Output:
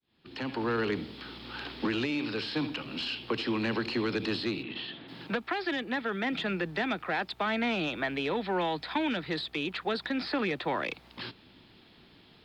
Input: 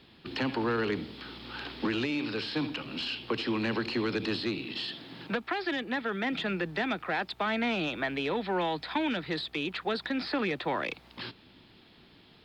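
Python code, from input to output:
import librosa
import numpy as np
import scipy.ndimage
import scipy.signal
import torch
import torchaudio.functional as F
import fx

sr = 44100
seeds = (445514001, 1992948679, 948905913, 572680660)

y = fx.fade_in_head(x, sr, length_s=0.76)
y = fx.lowpass(y, sr, hz=3400.0, slope=24, at=(4.62, 5.07), fade=0.02)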